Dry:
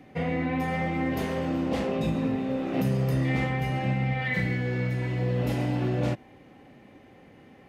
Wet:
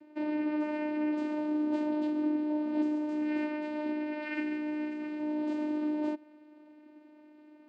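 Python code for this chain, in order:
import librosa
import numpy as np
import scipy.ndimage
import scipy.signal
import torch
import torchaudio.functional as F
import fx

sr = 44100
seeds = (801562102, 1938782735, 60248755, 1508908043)

y = fx.vocoder(x, sr, bands=8, carrier='saw', carrier_hz=302.0)
y = y * librosa.db_to_amplitude(-4.0)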